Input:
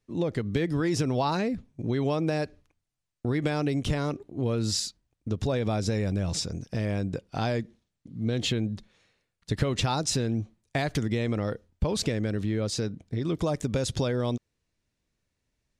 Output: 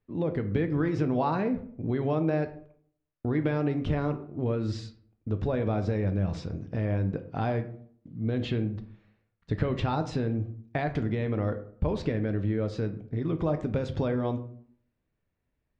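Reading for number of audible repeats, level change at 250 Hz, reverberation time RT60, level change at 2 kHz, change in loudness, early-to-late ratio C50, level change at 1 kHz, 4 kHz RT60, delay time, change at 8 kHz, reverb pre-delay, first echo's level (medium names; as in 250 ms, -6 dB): no echo, 0.0 dB, 0.60 s, -3.0 dB, -1.0 dB, 13.0 dB, -0.5 dB, 0.35 s, no echo, under -20 dB, 5 ms, no echo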